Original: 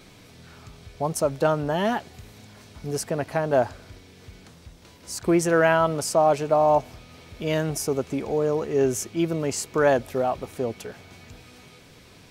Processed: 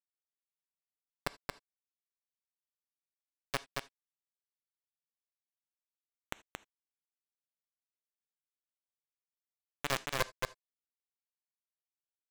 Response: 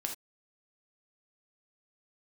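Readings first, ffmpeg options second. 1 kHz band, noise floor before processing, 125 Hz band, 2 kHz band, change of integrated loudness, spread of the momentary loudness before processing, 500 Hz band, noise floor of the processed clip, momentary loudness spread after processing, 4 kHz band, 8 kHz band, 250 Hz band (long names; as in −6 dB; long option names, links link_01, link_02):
−20.5 dB, −50 dBFS, −22.0 dB, −13.0 dB, −15.5 dB, 11 LU, −26.5 dB, below −85 dBFS, 14 LU, −8.5 dB, −18.0 dB, −28.0 dB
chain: -filter_complex "[0:a]aecho=1:1:0.8:0.38,areverse,acompressor=threshold=-33dB:ratio=6,areverse,asoftclip=type=hard:threshold=-39.5dB,bandpass=frequency=540:width_type=q:width=6.3:csg=0,acrusher=bits=4:dc=4:mix=0:aa=0.000001,aecho=1:1:226:0.668,asplit=2[link_01][link_02];[1:a]atrim=start_sample=2205,lowpass=6000,highshelf=frequency=3300:gain=11.5[link_03];[link_02][link_03]afir=irnorm=-1:irlink=0,volume=-15dB[link_04];[link_01][link_04]amix=inputs=2:normalize=0,volume=16.5dB"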